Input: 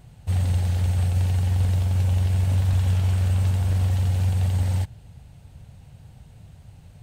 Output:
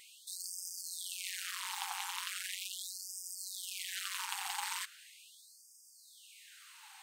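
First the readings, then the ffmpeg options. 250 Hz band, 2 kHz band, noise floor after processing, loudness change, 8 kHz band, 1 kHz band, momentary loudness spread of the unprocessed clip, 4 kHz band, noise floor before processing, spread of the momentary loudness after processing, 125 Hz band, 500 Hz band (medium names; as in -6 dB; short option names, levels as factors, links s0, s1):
under -40 dB, -0.5 dB, -61 dBFS, -17.0 dB, +3.0 dB, -4.0 dB, 3 LU, +1.5 dB, -48 dBFS, 19 LU, under -40 dB, under -30 dB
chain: -af "asoftclip=type=tanh:threshold=0.0708,afftfilt=real='re*gte(b*sr/1024,730*pow(4800/730,0.5+0.5*sin(2*PI*0.39*pts/sr)))':imag='im*gte(b*sr/1024,730*pow(4800/730,0.5+0.5*sin(2*PI*0.39*pts/sr)))':win_size=1024:overlap=0.75,volume=2.82"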